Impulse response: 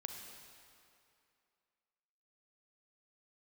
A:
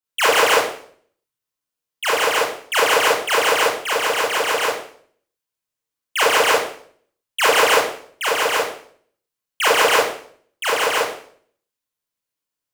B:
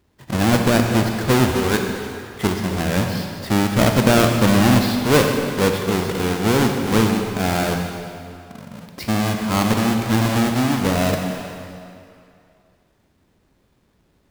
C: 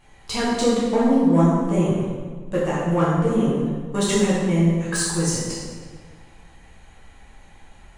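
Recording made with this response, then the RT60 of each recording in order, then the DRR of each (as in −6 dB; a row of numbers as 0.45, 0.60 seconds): B; 0.55, 2.6, 1.6 seconds; −7.0, 3.5, −8.0 decibels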